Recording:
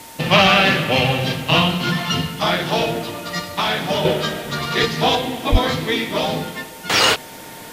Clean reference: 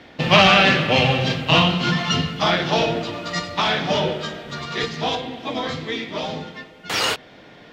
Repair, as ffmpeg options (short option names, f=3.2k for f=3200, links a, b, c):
-filter_complex "[0:a]bandreject=f=910:w=30,asplit=3[a][b][c];[a]afade=t=out:st=5.51:d=0.02[d];[b]highpass=f=140:w=0.5412,highpass=f=140:w=1.3066,afade=t=in:st=5.51:d=0.02,afade=t=out:st=5.63:d=0.02[e];[c]afade=t=in:st=5.63:d=0.02[f];[d][e][f]amix=inputs=3:normalize=0,afwtdn=0.01,asetnsamples=n=441:p=0,asendcmd='4.05 volume volume -6.5dB',volume=0dB"